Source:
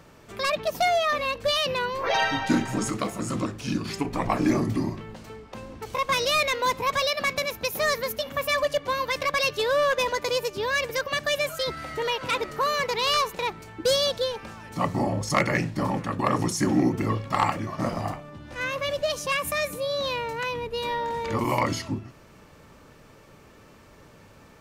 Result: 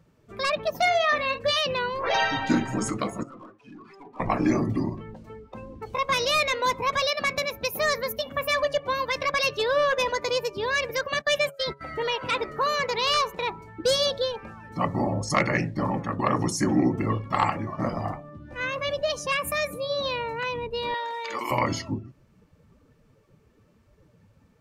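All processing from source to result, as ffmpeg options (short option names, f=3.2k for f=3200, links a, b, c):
-filter_complex "[0:a]asettb=1/sr,asplit=3[a][b][c];[a]atrim=end=0.764[d];[b]atrim=start=0.76:end=1.59,asetpts=PTS-STARTPTS,afade=t=in:d=0.004:c=qsin,afade=t=out:st=0.826:d=0.004:c=qsin,highpass=42,equalizer=f=1.9k:w=3.5:g=5,asplit=2[e][f];[f]adelay=45,volume=-10.5dB[g];[e][g]amix=inputs=2:normalize=0,atrim=end_sample=36603[h];[c]atrim=start=1.586[i];[d][h]acrossfade=d=0.004:c1=hsin:c2=qsin[j];[j][i]acrossfade=d=0.004:c1=qsin:c2=hsin,asettb=1/sr,asplit=3[k][l][m];[k]atrim=end=3.234[n];[l]atrim=start=3.23:end=4.2,asetpts=PTS-STARTPTS,afade=t=in:d=0.004:c=qsin,afade=t=out:st=0.966:d=0.004:c=qsin,bandpass=f=1k:t=q:w=1,aeval=exprs='(tanh(100*val(0)+0.15)-tanh(0.15))/100':c=same[o];[m]atrim=start=4.196[p];[n][o]acrossfade=d=0.004:c1=hsin:c2=qsin[q];[q][p]acrossfade=d=0.004:c1=qsin:c2=hsin,asettb=1/sr,asplit=3[r][s][t];[r]atrim=end=11.144[u];[s]atrim=start=11.14:end=11.81,asetpts=PTS-STARTPTS,afade=t=in:d=0.004:c=qsin,afade=t=out:st=0.666:d=0.004:c=qsin,agate=range=-23dB:threshold=-33dB:ratio=16:release=100:detection=peak,acompressor=mode=upward:threshold=-34dB:ratio=2.5:attack=3.2:release=140:knee=2.83:detection=peak,aecho=1:1:5.1:0.3,atrim=end_sample=29547[v];[t]atrim=start=11.806[w];[u][v]acrossfade=d=0.004:c1=hsin:c2=qsin[x];[x][w]acrossfade=d=0.004:c1=qsin:c2=hsin,asettb=1/sr,asplit=3[y][z][aa];[y]atrim=end=20.944[ab];[z]atrim=start=20.94:end=21.51,asetpts=PTS-STARTPTS,afade=t=in:d=0.004:c=qsin,afade=t=out:st=0.566:d=0.004:c=qsin,highpass=360,tiltshelf=f=1.3k:g=-6.5[ac];[aa]atrim=start=21.506[ad];[ab][ac]acrossfade=d=0.004:c1=hsin:c2=qsin[ae];[ae][ad]acrossfade=d=0.004:c1=qsin:c2=hsin,bandreject=f=138.8:t=h:w=4,bandreject=f=277.6:t=h:w=4,bandreject=f=416.4:t=h:w=4,bandreject=f=555.2:t=h:w=4,bandreject=f=694:t=h:w=4,bandreject=f=832.8:t=h:w=4,bandreject=f=971.6:t=h:w=4,afftdn=nr=16:nf=-41"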